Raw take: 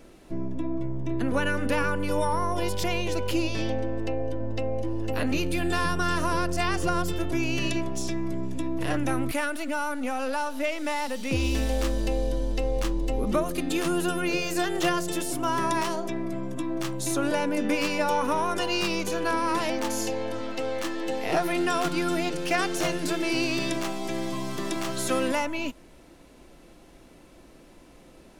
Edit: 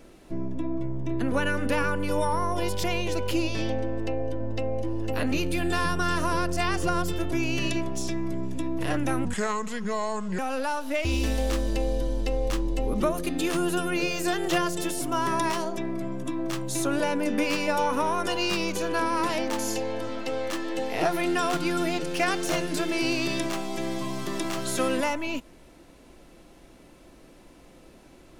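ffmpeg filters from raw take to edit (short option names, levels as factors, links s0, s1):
-filter_complex "[0:a]asplit=4[s0][s1][s2][s3];[s0]atrim=end=9.254[s4];[s1]atrim=start=9.25:end=10.08,asetpts=PTS-STARTPTS,asetrate=32193,aresample=44100,atrim=end_sample=50141,asetpts=PTS-STARTPTS[s5];[s2]atrim=start=10.076:end=10.742[s6];[s3]atrim=start=11.358[s7];[s4][s5]acrossfade=d=0.004:c1=hsin:c2=hsin[s8];[s8][s6]acrossfade=d=0.004:c1=hsin:c2=hsin[s9];[s9][s7]acrossfade=d=0.004:c1=hsin:c2=hsin"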